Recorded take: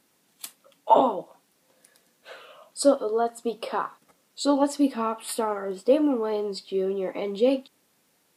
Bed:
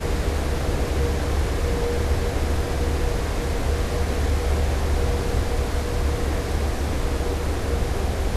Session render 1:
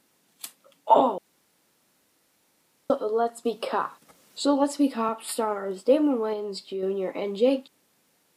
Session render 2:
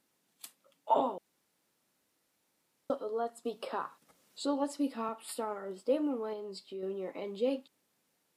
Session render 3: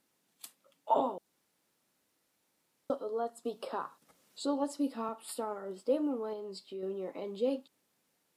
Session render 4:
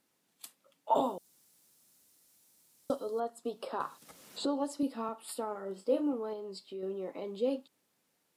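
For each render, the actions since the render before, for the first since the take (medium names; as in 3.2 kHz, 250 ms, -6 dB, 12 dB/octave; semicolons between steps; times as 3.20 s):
1.18–2.90 s: room tone; 3.45–5.09 s: three bands compressed up and down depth 40%; 6.33–6.83 s: compression 2.5:1, threshold -30 dBFS
trim -10 dB
dynamic bell 2.2 kHz, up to -6 dB, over -56 dBFS, Q 1.4
0.95–3.20 s: tone controls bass +5 dB, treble +14 dB; 3.80–4.83 s: three bands compressed up and down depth 70%; 5.52–6.13 s: doubling 31 ms -8 dB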